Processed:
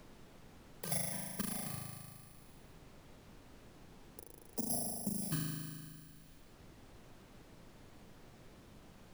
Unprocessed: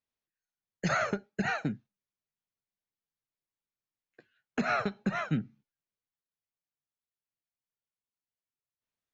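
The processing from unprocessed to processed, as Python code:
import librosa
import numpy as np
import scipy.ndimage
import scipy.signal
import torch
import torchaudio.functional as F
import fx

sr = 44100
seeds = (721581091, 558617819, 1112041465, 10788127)

y = fx.bit_reversed(x, sr, seeds[0], block=32)
y = fx.hum_notches(y, sr, base_hz=60, count=4)
y = fx.level_steps(y, sr, step_db=14)
y = fx.spec_erase(y, sr, start_s=3.17, length_s=2.05, low_hz=910.0, high_hz=4800.0)
y = np.clip(y, -10.0 ** (-22.5 / 20.0), 10.0 ** (-22.5 / 20.0))
y = fx.env_flanger(y, sr, rest_ms=2.4, full_db=-24.0)
y = np.sign(y) * np.maximum(np.abs(y) - 10.0 ** (-58.5 / 20.0), 0.0)
y = fx.room_flutter(y, sr, wall_m=6.5, rt60_s=1.2)
y = fx.dmg_noise_colour(y, sr, seeds[1], colour='brown', level_db=-67.0)
y = fx.band_squash(y, sr, depth_pct=70)
y = F.gain(torch.from_numpy(y), 1.0).numpy()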